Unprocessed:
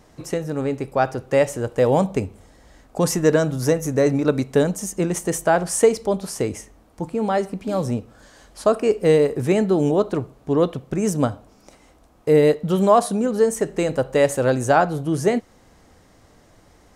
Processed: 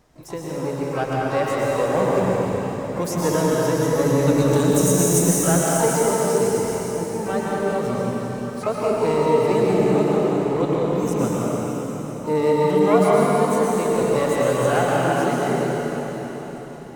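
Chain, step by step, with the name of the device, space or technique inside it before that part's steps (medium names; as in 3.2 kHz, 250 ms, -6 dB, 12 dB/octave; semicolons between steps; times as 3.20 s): 4.08–5.24 s: tone controls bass +7 dB, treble +14 dB; shimmer-style reverb (harmony voices +12 st -10 dB; reverberation RT60 4.9 s, pre-delay 104 ms, DRR -5.5 dB); trim -7.5 dB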